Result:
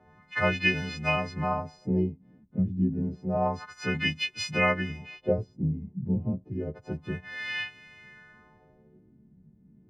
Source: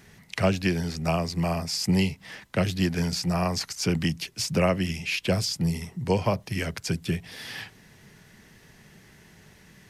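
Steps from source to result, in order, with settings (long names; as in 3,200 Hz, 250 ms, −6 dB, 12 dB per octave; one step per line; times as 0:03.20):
every partial snapped to a pitch grid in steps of 3 semitones
auto-filter low-pass sine 0.29 Hz 210–2,600 Hz
level −4.5 dB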